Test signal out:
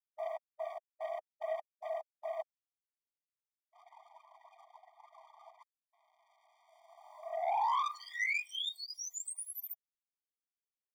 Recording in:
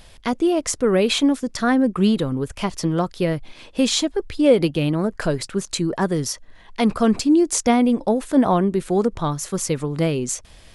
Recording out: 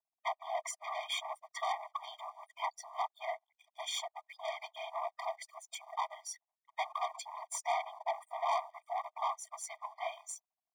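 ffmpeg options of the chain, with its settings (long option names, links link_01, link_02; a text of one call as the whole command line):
ffmpeg -i in.wav -af "afftfilt=real='re*gte(hypot(re,im),0.0224)':imag='im*gte(hypot(re,im),0.0224)':win_size=1024:overlap=0.75,equalizer=frequency=1100:width_type=o:width=2.6:gain=13.5,bandreject=frequency=4700:width=7.5,afftfilt=real='hypot(re,im)*cos(2*PI*random(0))':imag='hypot(re,im)*sin(2*PI*random(1))':win_size=512:overlap=0.75,aeval=exprs='(tanh(8.91*val(0)+0.2)-tanh(0.2))/8.91':channel_layout=same,aeval=exprs='sgn(val(0))*max(abs(val(0))-0.00251,0)':channel_layout=same,afftfilt=real='re*eq(mod(floor(b*sr/1024/620),2),1)':imag='im*eq(mod(floor(b*sr/1024/620),2),1)':win_size=1024:overlap=0.75,volume=-8dB" out.wav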